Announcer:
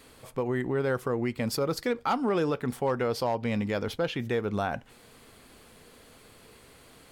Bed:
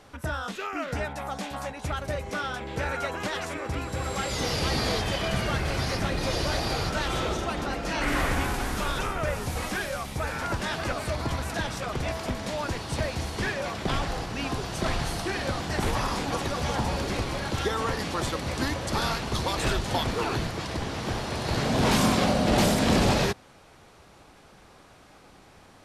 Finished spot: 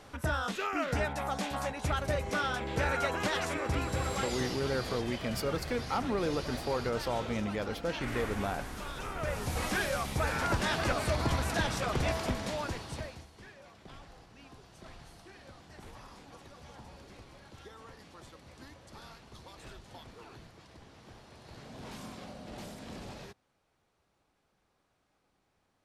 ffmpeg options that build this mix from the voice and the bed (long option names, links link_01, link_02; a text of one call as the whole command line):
ffmpeg -i stem1.wav -i stem2.wav -filter_complex "[0:a]adelay=3850,volume=-5.5dB[link_01];[1:a]volume=11dB,afade=type=out:start_time=3.88:duration=0.71:silence=0.266073,afade=type=in:start_time=8.96:duration=0.88:silence=0.266073,afade=type=out:start_time=12.1:duration=1.17:silence=0.0749894[link_02];[link_01][link_02]amix=inputs=2:normalize=0" out.wav